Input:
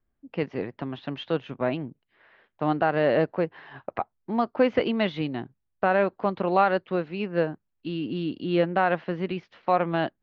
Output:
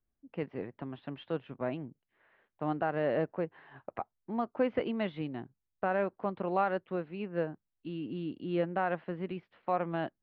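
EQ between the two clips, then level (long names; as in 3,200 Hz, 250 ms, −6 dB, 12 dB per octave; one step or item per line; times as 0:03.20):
high-frequency loss of the air 280 metres
−7.5 dB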